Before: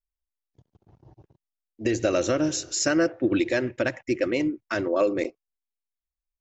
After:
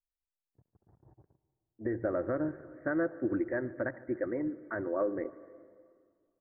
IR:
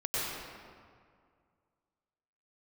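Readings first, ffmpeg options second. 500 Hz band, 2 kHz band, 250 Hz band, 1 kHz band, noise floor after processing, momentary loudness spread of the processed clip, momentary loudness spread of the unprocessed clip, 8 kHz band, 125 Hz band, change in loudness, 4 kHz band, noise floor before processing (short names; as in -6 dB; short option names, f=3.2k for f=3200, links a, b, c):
-8.5 dB, -10.0 dB, -8.5 dB, -8.5 dB, under -85 dBFS, 7 LU, 6 LU, n/a, -8.5 dB, -9.0 dB, under -40 dB, under -85 dBFS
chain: -filter_complex "[0:a]asuperstop=centerf=5400:order=20:qfactor=0.52,asplit=2[a][b];[b]adelay=147,lowpass=f=2k:p=1,volume=-21dB,asplit=2[c][d];[d]adelay=147,lowpass=f=2k:p=1,volume=0.49,asplit=2[e][f];[f]adelay=147,lowpass=f=2k:p=1,volume=0.49,asplit=2[g][h];[h]adelay=147,lowpass=f=2k:p=1,volume=0.49[i];[a][c][e][g][i]amix=inputs=5:normalize=0,asplit=2[j][k];[1:a]atrim=start_sample=2205,adelay=115[l];[k][l]afir=irnorm=-1:irlink=0,volume=-27.5dB[m];[j][m]amix=inputs=2:normalize=0,volume=-8.5dB"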